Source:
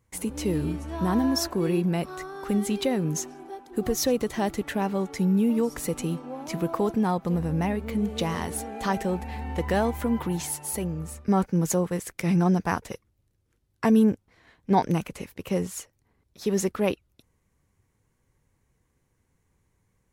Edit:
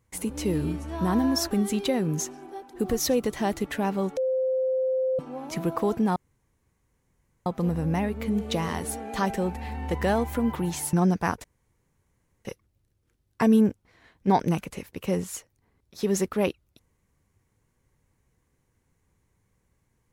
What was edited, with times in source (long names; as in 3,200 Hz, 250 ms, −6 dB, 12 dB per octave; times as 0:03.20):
0:01.51–0:02.48: remove
0:05.14–0:06.16: beep over 520 Hz −22 dBFS
0:07.13: splice in room tone 1.30 s
0:10.60–0:12.37: remove
0:12.88: splice in room tone 1.01 s